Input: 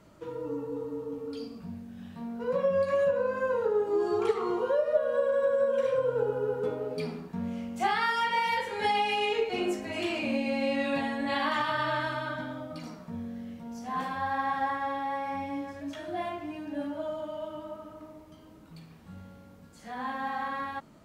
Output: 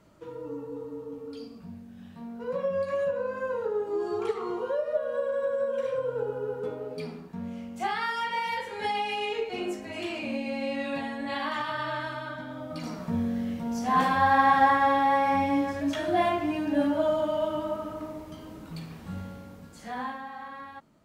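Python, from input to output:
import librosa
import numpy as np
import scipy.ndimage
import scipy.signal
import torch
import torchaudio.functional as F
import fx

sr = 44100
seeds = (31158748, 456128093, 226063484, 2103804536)

y = fx.gain(x, sr, db=fx.line((12.44, -2.5), (13.05, 9.5), (19.16, 9.5), (19.99, 3.0), (20.27, -7.5)))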